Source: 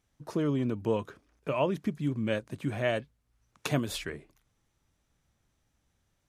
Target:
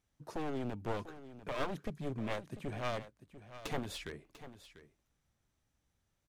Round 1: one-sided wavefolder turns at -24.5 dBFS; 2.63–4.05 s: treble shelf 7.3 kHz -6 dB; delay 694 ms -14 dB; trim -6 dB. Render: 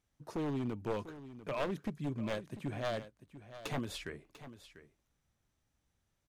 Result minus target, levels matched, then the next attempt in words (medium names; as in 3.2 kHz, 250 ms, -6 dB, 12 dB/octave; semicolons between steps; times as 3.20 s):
one-sided wavefolder: distortion -9 dB
one-sided wavefolder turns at -30.5 dBFS; 2.63–4.05 s: treble shelf 7.3 kHz -6 dB; delay 694 ms -14 dB; trim -6 dB